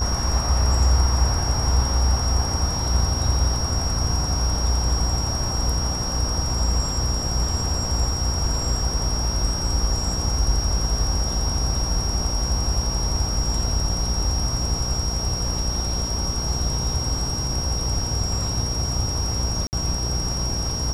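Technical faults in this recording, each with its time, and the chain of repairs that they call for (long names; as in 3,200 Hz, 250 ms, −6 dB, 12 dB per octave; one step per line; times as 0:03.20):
mains buzz 60 Hz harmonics 27 −28 dBFS
whistle 5,600 Hz −27 dBFS
0:19.67–0:19.73: drop-out 59 ms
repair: hum removal 60 Hz, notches 27
notch filter 5,600 Hz, Q 30
repair the gap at 0:19.67, 59 ms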